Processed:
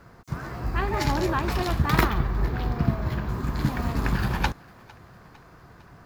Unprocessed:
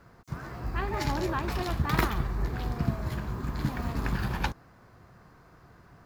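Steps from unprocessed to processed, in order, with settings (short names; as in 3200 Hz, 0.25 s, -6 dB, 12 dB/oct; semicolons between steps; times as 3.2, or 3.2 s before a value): 2.03–3.29 bell 9000 Hz -12 dB 1.1 oct; thinning echo 0.454 s, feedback 62%, level -23.5 dB; gain +5 dB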